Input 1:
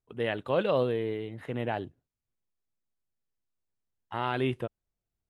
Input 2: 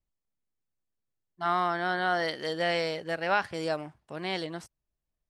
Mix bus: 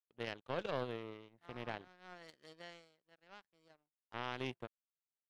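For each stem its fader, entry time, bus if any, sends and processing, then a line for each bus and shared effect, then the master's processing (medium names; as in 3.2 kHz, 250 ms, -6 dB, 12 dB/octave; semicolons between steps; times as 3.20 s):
-3.5 dB, 0.00 s, no send, none
2.36 s -6 dB -> 2.89 s -16.5 dB, 0.00 s, no send, high-pass 130 Hz 24 dB/octave; bass shelf 210 Hz +7.5 dB; auto duck -11 dB, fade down 0.25 s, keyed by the first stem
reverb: none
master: bass shelf 75 Hz -8.5 dB; power-law waveshaper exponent 2; peak limiter -25 dBFS, peak gain reduction 6.5 dB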